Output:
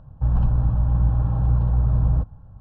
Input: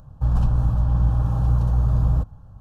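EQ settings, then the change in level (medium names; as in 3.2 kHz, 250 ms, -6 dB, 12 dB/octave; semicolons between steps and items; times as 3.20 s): distance through air 360 m; band-stop 1.2 kHz, Q 16; 0.0 dB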